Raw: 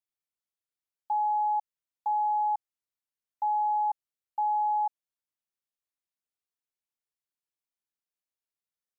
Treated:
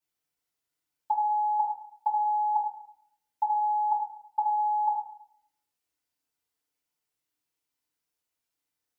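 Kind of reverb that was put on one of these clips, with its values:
feedback delay network reverb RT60 0.67 s, low-frequency decay 1.1×, high-frequency decay 0.85×, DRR −7.5 dB

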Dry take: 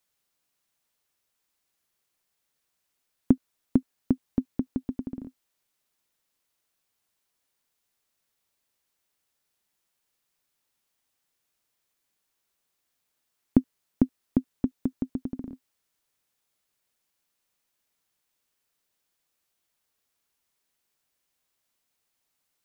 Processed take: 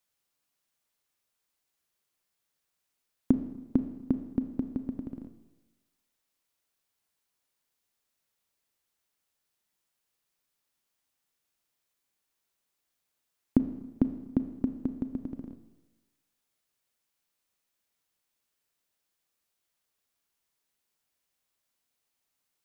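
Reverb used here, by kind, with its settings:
four-comb reverb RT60 1.1 s, combs from 27 ms, DRR 9 dB
level −3.5 dB

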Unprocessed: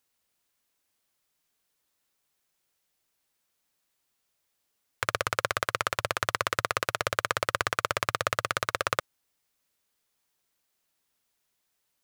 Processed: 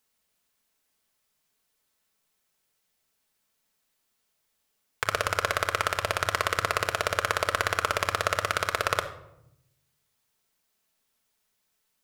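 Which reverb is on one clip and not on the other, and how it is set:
rectangular room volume 2,200 cubic metres, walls furnished, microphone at 1.5 metres
level +1 dB

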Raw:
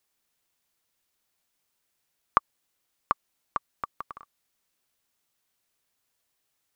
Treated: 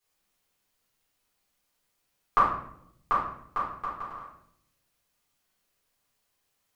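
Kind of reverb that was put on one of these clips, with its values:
rectangular room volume 150 cubic metres, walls mixed, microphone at 3.8 metres
level −10 dB

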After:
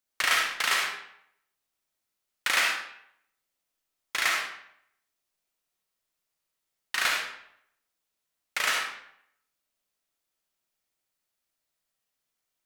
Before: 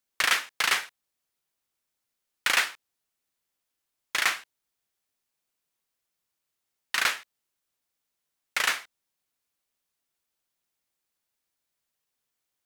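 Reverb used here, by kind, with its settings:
comb and all-pass reverb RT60 0.71 s, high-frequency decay 0.8×, pre-delay 15 ms, DRR −0.5 dB
level −3 dB

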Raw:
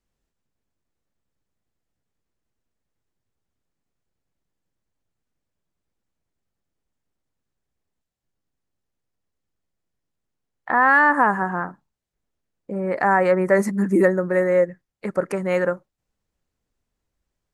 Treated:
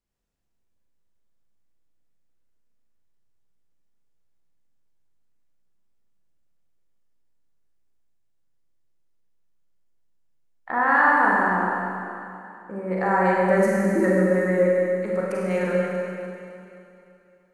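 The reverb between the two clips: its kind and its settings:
four-comb reverb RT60 2.8 s, combs from 33 ms, DRR −4.5 dB
level −7 dB

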